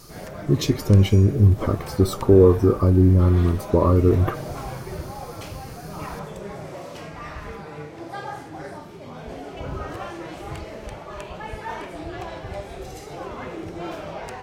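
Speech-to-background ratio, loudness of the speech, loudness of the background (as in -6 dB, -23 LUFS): 17.0 dB, -18.0 LUFS, -35.0 LUFS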